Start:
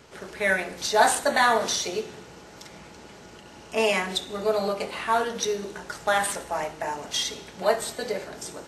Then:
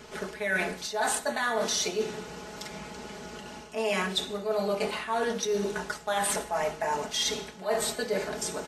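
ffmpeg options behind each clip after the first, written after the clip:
-af "aecho=1:1:4.7:0.56,areverse,acompressor=threshold=-28dB:ratio=12,areverse,volume=3dB"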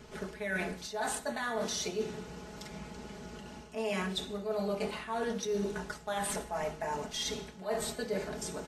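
-af "lowshelf=f=240:g=10.5,volume=-7.5dB"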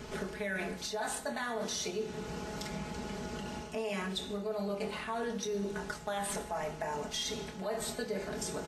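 -filter_complex "[0:a]asplit=2[a][b];[b]adelay=25,volume=-11dB[c];[a][c]amix=inputs=2:normalize=0,acompressor=threshold=-43dB:ratio=3,volume=7dB"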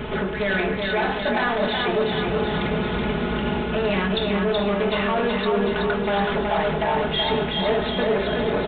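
-af "aresample=8000,aeval=exprs='0.0668*sin(PI/2*2.24*val(0)/0.0668)':c=same,aresample=44100,aecho=1:1:375|750|1125|1500|1875|2250|2625|3000:0.668|0.394|0.233|0.137|0.081|0.0478|0.0282|0.0166,volume=4.5dB"

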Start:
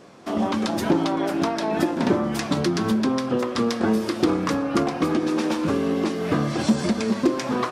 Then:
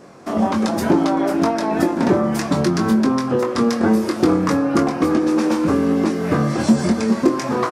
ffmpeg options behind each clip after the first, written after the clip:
-filter_complex "[0:a]equalizer=f=3.3k:w=1.5:g=-7.5,asplit=2[a][b];[b]adelay=22,volume=-6.5dB[c];[a][c]amix=inputs=2:normalize=0,volume=4dB"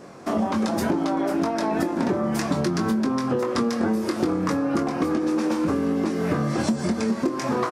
-af "acompressor=threshold=-20dB:ratio=6"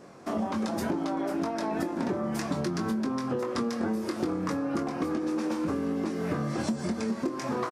-af "aresample=32000,aresample=44100,volume=-6.5dB"

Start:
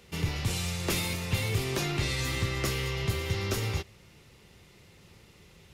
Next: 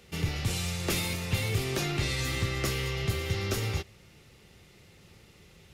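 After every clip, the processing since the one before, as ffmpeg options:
-af "bandreject=f=990:w=11"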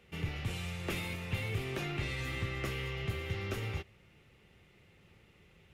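-af "highshelf=f=3.6k:t=q:w=1.5:g=-7.5,volume=-6.5dB"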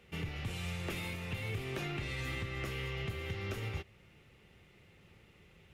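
-af "alimiter=level_in=5.5dB:limit=-24dB:level=0:latency=1:release=241,volume=-5.5dB,volume=1dB"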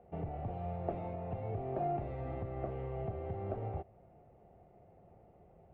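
-af "lowpass=f=700:t=q:w=8,volume=-1.5dB"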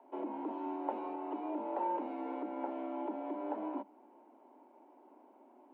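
-af "afreqshift=200"

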